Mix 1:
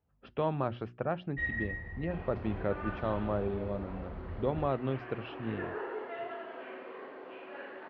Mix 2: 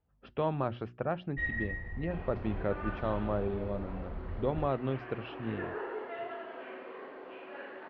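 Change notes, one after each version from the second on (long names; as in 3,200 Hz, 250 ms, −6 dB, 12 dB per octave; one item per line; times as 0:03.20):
master: remove high-pass filter 46 Hz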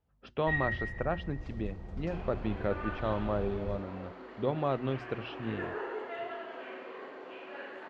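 first sound: entry −0.90 s
master: remove high-frequency loss of the air 210 metres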